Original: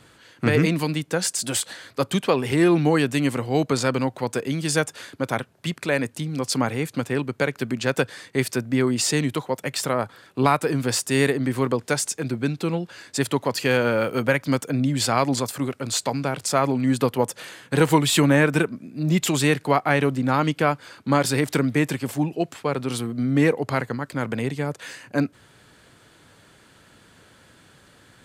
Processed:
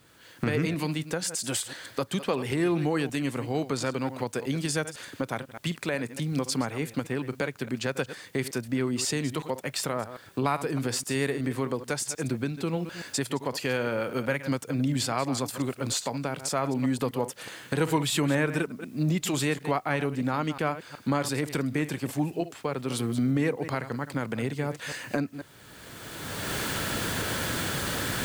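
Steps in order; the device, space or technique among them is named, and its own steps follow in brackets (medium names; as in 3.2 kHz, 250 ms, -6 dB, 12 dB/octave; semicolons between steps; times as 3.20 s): chunks repeated in reverse 124 ms, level -13.5 dB; cheap recorder with automatic gain (white noise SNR 37 dB; recorder AGC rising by 22 dB/s); trim -8 dB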